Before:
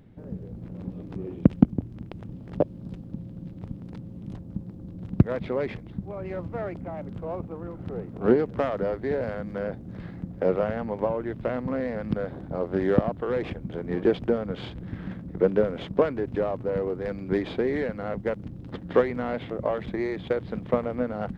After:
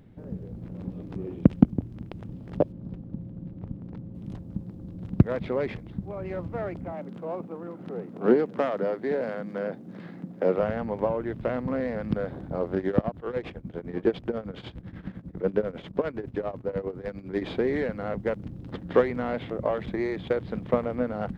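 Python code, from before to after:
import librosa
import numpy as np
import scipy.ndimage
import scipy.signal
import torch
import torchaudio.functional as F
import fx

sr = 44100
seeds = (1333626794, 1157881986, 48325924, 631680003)

y = fx.lowpass(x, sr, hz=1300.0, slope=6, at=(2.72, 4.15))
y = fx.highpass(y, sr, hz=170.0, slope=24, at=(6.92, 10.58))
y = fx.tremolo_shape(y, sr, shape='triangle', hz=10.0, depth_pct=90, at=(12.75, 17.42))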